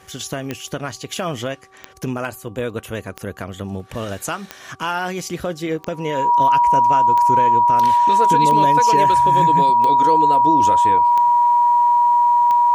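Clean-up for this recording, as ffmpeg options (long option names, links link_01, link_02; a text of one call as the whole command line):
ffmpeg -i in.wav -af "adeclick=threshold=4,bandreject=frequency=383.5:width_type=h:width=4,bandreject=frequency=767:width_type=h:width=4,bandreject=frequency=1150.5:width_type=h:width=4,bandreject=frequency=960:width=30" out.wav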